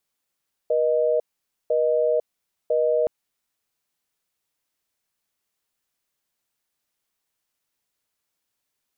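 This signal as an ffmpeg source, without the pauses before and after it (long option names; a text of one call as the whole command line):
ffmpeg -f lavfi -i "aevalsrc='0.0944*(sin(2*PI*480*t)+sin(2*PI*620*t))*clip(min(mod(t,1),0.5-mod(t,1))/0.005,0,1)':duration=2.37:sample_rate=44100" out.wav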